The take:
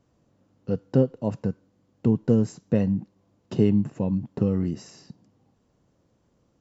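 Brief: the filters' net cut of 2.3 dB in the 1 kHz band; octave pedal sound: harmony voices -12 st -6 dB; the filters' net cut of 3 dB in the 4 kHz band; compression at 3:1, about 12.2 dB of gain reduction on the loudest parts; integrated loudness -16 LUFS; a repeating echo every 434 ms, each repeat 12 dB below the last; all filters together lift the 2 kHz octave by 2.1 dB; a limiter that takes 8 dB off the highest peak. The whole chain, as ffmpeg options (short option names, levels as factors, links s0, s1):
-filter_complex "[0:a]equalizer=f=1000:t=o:g=-4,equalizer=f=2000:t=o:g=6,equalizer=f=4000:t=o:g=-7.5,acompressor=threshold=0.0251:ratio=3,alimiter=level_in=1.19:limit=0.0631:level=0:latency=1,volume=0.841,aecho=1:1:434|868|1302:0.251|0.0628|0.0157,asplit=2[s0][s1];[s1]asetrate=22050,aresample=44100,atempo=2,volume=0.501[s2];[s0][s2]amix=inputs=2:normalize=0,volume=11.9"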